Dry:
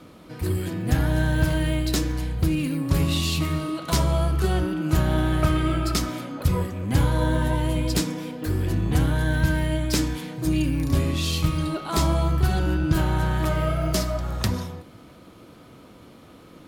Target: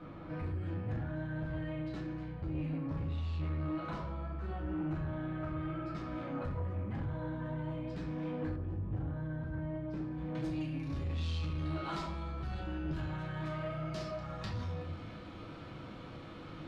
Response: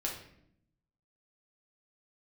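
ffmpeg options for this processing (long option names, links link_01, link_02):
-filter_complex "[0:a]equalizer=frequency=380:width=0.83:gain=-5.5,acompressor=threshold=-36dB:ratio=6[link_01];[1:a]atrim=start_sample=2205,afade=type=out:start_time=0.24:duration=0.01,atrim=end_sample=11025[link_02];[link_01][link_02]afir=irnorm=-1:irlink=0,asoftclip=type=tanh:threshold=-30.5dB,asetnsamples=nb_out_samples=441:pad=0,asendcmd='8.56 lowpass f 1000;10.35 lowpass f 3700',lowpass=1700"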